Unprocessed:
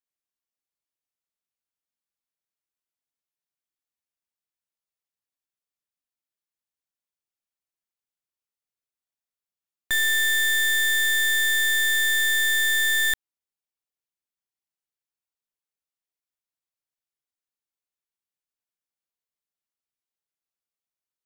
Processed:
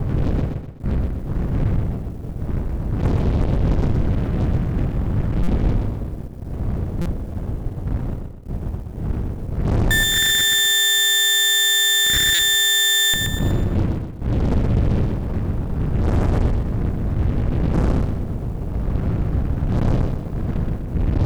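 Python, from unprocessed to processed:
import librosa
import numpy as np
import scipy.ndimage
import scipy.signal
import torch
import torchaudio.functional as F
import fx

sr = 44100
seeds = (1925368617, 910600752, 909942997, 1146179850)

p1 = fx.dmg_wind(x, sr, seeds[0], corner_hz=110.0, level_db=-39.0)
p2 = fx.peak_eq(p1, sr, hz=980.0, db=-14.0, octaves=0.33)
p3 = fx.over_compress(p2, sr, threshold_db=-30.0, ratio=-0.5)
p4 = p2 + (p3 * 10.0 ** (2.0 / 20.0))
p5 = fx.leveller(p4, sr, passes=5)
p6 = fx.clip_asym(p5, sr, top_db=-22.5, bottom_db=-13.5)
p7 = p6 + fx.echo_feedback(p6, sr, ms=125, feedback_pct=41, wet_db=-4.5, dry=0)
y = fx.buffer_glitch(p7, sr, at_s=(5.43, 7.01, 12.34), block=256, repeats=7)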